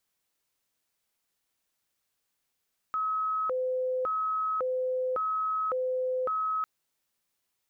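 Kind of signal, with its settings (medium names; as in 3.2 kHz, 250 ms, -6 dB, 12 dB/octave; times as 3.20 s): siren hi-lo 511–1280 Hz 0.9 per s sine -26.5 dBFS 3.70 s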